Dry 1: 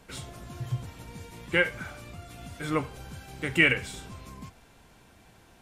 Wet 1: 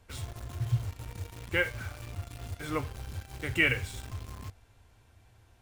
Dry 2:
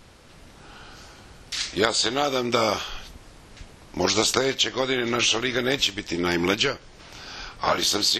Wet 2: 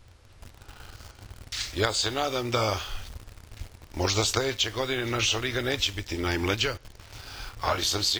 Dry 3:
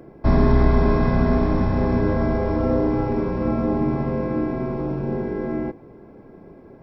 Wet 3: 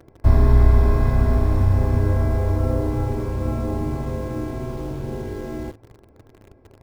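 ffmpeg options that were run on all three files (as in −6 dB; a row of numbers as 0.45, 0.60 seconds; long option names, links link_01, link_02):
-filter_complex "[0:a]lowshelf=frequency=130:width_type=q:width=3:gain=7,asplit=2[link_01][link_02];[link_02]acrusher=bits=5:mix=0:aa=0.000001,volume=-3.5dB[link_03];[link_01][link_03]amix=inputs=2:normalize=0,volume=-8.5dB"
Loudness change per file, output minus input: −5.5, −4.0, 0.0 LU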